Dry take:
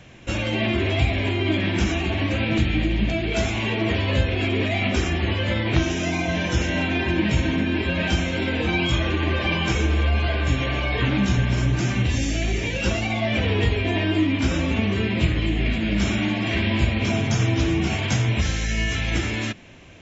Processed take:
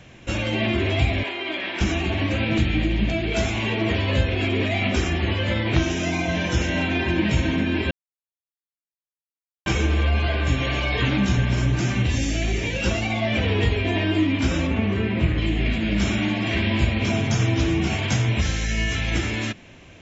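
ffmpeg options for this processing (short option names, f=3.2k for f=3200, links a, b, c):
-filter_complex "[0:a]asettb=1/sr,asplit=3[a][b][c];[a]atrim=end=1.234[d];[b]atrim=start=1.23:end=1.81,asetpts=PTS-STARTPTS,afade=t=in:d=0.004:c=qsin,afade=t=out:st=0.576:d=0.004:c=qsin,highpass=550,lowpass=4.9k[e];[c]atrim=start=1.806[f];[d][e]acrossfade=d=0.004:c1=hsin:c2=qsin[g];[g][f]acrossfade=d=0.004:c1=qsin:c2=hsin,asettb=1/sr,asplit=3[h][i][j];[h]atrim=end=10.644[k];[i]atrim=start=10.64:end=11.16,asetpts=PTS-STARTPTS,afade=t=in:d=0.004:c=qsin,afade=t=out:st=0.516:d=0.004:c=qsin,aemphasis=mode=production:type=cd[l];[j]atrim=start=11.156[m];[k][l]acrossfade=d=0.004:c1=hsin:c2=qsin[n];[n][m]acrossfade=d=0.004:c1=qsin:c2=hsin,asettb=1/sr,asplit=3[o][p][q];[o]atrim=end=14.674[r];[p]atrim=start=14.67:end=15.38,asetpts=PTS-STARTPTS,afade=t=in:d=0.004:c=qsin,afade=t=out:st=0.706:d=0.004:c=qsin,acrossover=split=2600[s][t];[t]acompressor=threshold=-45dB:ratio=4:attack=1:release=60[u];[s][u]amix=inputs=2:normalize=0[v];[q]atrim=start=15.376[w];[r][v]acrossfade=d=0.004:c1=hsin:c2=qsin[x];[x][w]acrossfade=d=0.004:c1=qsin:c2=hsin,asplit=3[y][z][aa];[y]atrim=end=7.91,asetpts=PTS-STARTPTS,afade=t=out:st=7.906:d=0.004:c=hsin[ab];[z]atrim=start=7.91:end=9.66,asetpts=PTS-STARTPTS,volume=0[ac];[aa]atrim=start=9.66,asetpts=PTS-STARTPTS,afade=t=in:d=0.004:c=hsin[ad];[ab][ac][ad]concat=n=3:v=0:a=1"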